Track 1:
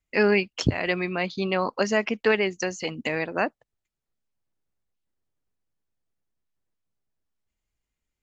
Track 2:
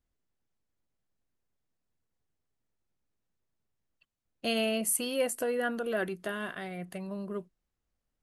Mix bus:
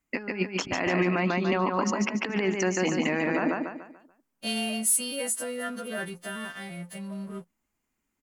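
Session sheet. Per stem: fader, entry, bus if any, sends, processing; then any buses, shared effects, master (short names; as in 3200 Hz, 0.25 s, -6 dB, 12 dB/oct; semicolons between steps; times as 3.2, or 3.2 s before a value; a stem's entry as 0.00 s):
+2.5 dB, 0.00 s, no send, echo send -4 dB, graphic EQ 250/500/1000/4000 Hz +12/-5/+4/-9 dB; negative-ratio compressor -24 dBFS, ratio -0.5
-9.0 dB, 0.00 s, no send, no echo send, frequency quantiser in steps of 2 st; resonant low shelf 270 Hz +7.5 dB, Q 1.5; sample leveller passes 2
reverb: off
echo: feedback echo 0.145 s, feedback 36%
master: low shelf 170 Hz -12 dB; limiter -15 dBFS, peak gain reduction 8.5 dB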